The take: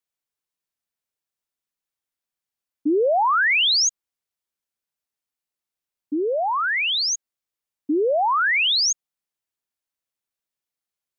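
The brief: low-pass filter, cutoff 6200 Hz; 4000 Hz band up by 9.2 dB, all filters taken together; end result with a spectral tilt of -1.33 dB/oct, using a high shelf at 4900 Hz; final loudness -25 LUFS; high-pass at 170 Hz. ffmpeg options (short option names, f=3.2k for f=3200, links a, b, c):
-af "highpass=170,lowpass=6.2k,equalizer=f=4k:t=o:g=8.5,highshelf=f=4.9k:g=8,volume=-12dB"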